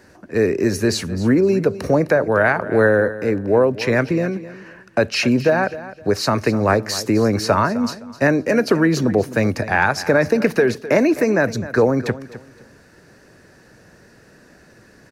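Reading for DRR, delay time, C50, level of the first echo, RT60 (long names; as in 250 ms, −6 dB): no reverb audible, 258 ms, no reverb audible, −15.5 dB, no reverb audible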